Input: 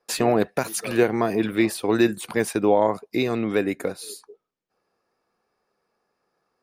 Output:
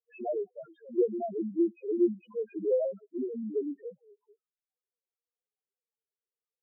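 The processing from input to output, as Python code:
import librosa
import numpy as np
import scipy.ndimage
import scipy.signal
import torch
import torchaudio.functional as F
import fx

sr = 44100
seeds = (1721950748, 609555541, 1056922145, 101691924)

y = np.repeat(scipy.signal.resample_poly(x, 1, 6), 6)[:len(x)]
y = fx.spec_topn(y, sr, count=1)
y = fx.band_widen(y, sr, depth_pct=40)
y = y * librosa.db_to_amplitude(-1.5)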